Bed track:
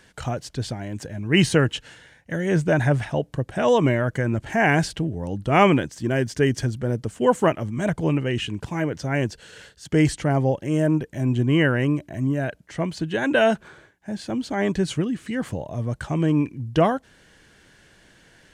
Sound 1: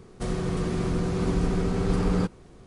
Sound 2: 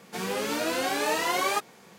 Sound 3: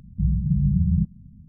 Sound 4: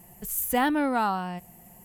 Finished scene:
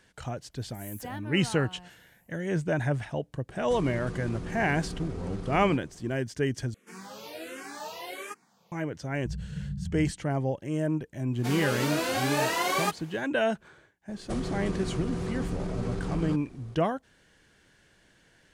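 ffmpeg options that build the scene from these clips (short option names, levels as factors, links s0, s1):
-filter_complex "[1:a]asplit=2[s0][s1];[2:a]asplit=2[s2][s3];[0:a]volume=0.398[s4];[s0]acompressor=threshold=0.0355:ratio=6:attack=3.2:release=140:knee=1:detection=peak[s5];[s2]asplit=2[s6][s7];[s7]afreqshift=-1.4[s8];[s6][s8]amix=inputs=2:normalize=1[s9];[s1]acompressor=threshold=0.0501:ratio=6:attack=3.2:release=140:knee=1:detection=peak[s10];[s4]asplit=2[s11][s12];[s11]atrim=end=6.744[s13];[s9]atrim=end=1.98,asetpts=PTS-STARTPTS,volume=0.316[s14];[s12]atrim=start=8.716[s15];[4:a]atrim=end=1.84,asetpts=PTS-STARTPTS,volume=0.158,afade=t=in:d=0.1,afade=t=out:st=1.74:d=0.1,adelay=500[s16];[s5]atrim=end=2.66,asetpts=PTS-STARTPTS,volume=0.631,afade=t=in:d=0.004:c=hsin,afade=t=out:st=2.656:d=0.004:c=hsin,adelay=3500[s17];[3:a]atrim=end=1.48,asetpts=PTS-STARTPTS,volume=0.188,afade=t=in:d=0.004:c=hsin,afade=t=out:st=1.476:d=0.004:c=hsin,adelay=399546S[s18];[s3]atrim=end=1.98,asetpts=PTS-STARTPTS,volume=0.891,afade=t=in:d=0.1,afade=t=out:st=1.88:d=0.1,adelay=11310[s19];[s10]atrim=end=2.66,asetpts=PTS-STARTPTS,volume=0.794,afade=t=in:d=0.004:c=hsin,afade=t=out:st=2.656:d=0.004:c=hsin,adelay=14090[s20];[s13][s14]acrossfade=d=0.004:c1=hsin:c2=hsin[s21];[s21][s15]acrossfade=d=0.004:c1=hsin:c2=hsin[s22];[s22][s16][s17][s18][s19][s20]amix=inputs=6:normalize=0"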